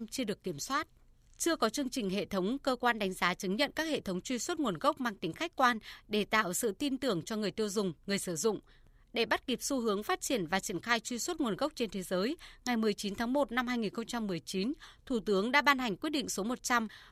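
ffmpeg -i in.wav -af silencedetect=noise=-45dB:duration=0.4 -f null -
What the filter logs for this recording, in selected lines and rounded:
silence_start: 0.83
silence_end: 1.34 | silence_duration: 0.50
silence_start: 8.59
silence_end: 9.14 | silence_duration: 0.55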